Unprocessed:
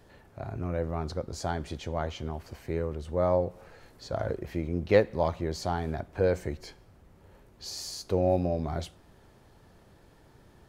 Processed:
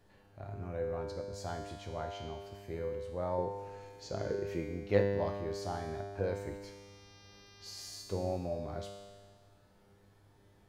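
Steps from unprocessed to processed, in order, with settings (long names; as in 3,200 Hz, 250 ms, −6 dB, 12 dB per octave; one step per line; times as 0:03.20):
0:03.38–0:04.64: graphic EQ with 15 bands 160 Hz +5 dB, 400 Hz +9 dB, 2,500 Hz +6 dB, 6,300 Hz +9 dB
0:06.62–0:07.89: hum with harmonics 400 Hz, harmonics 15, −67 dBFS 0 dB per octave
tuned comb filter 100 Hz, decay 1.6 s, harmonics all, mix 90%
level +7.5 dB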